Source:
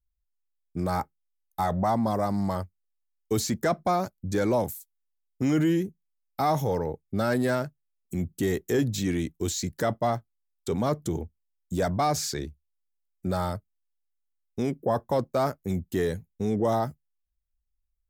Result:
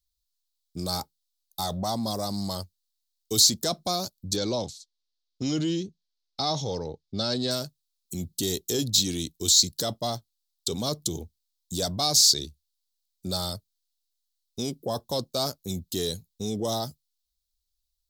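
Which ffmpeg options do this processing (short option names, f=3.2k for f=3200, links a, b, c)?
-filter_complex "[0:a]asettb=1/sr,asplit=3[a][b][c];[a]atrim=end=4.364[d];[b]atrim=start=4.36:end=7.51,asetpts=PTS-STARTPTS,afade=t=in:d=0.004:c=qsin,afade=t=out:st=3.146:d=0.004:c=qsin,lowpass=f=5.7k:w=0.5412,lowpass=f=5.7k:w=1.3066[e];[c]atrim=start=7.506[f];[d][e]acrossfade=d=0.004:c1=hsin:c2=qsin[g];[g][f]acrossfade=d=0.004:c1=qsin:c2=hsin,highshelf=f=2.8k:t=q:w=3:g=13.5,bandreject=f=880:w=22,volume=-4dB"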